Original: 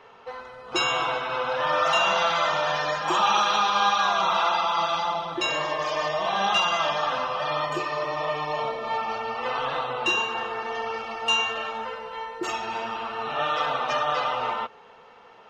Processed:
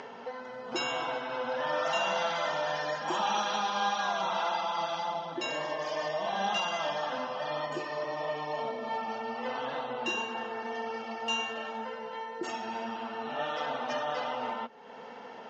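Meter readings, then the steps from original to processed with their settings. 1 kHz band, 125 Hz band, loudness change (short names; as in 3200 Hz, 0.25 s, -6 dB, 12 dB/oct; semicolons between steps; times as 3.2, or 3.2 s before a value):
-8.0 dB, -7.5 dB, -8.0 dB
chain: upward compressor, threshold -27 dBFS; speaker cabinet 170–6600 Hz, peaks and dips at 240 Hz +10 dB, 370 Hz -3 dB, 1200 Hz -10 dB, 2500 Hz -7 dB, 3800 Hz -6 dB; gain -4.5 dB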